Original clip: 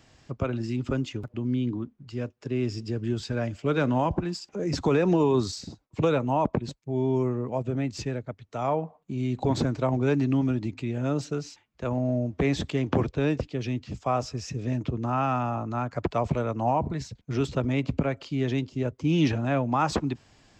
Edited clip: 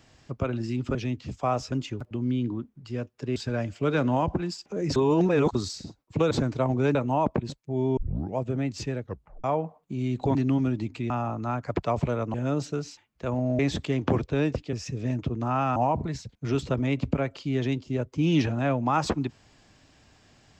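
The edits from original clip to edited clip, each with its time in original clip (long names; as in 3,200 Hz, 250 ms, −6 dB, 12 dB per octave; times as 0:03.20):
0:02.59–0:03.19: remove
0:04.79–0:05.38: reverse
0:07.16: tape start 0.39 s
0:08.22: tape stop 0.41 s
0:09.54–0:10.18: move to 0:06.14
0:12.18–0:12.44: remove
0:13.58–0:14.35: move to 0:00.95
0:15.38–0:16.62: move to 0:10.93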